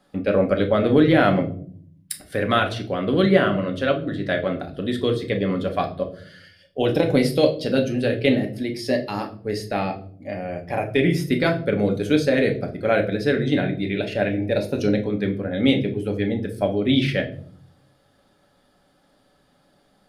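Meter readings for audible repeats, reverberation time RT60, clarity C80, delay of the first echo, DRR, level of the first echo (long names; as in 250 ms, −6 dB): no echo audible, 0.55 s, 17.0 dB, no echo audible, 3.0 dB, no echo audible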